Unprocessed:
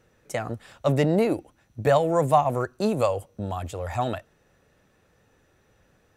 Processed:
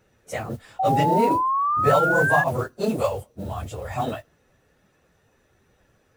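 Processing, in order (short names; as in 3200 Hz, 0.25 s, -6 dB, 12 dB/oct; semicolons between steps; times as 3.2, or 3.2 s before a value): phase scrambler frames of 50 ms; modulation noise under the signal 26 dB; painted sound rise, 0.79–2.44, 750–1700 Hz -22 dBFS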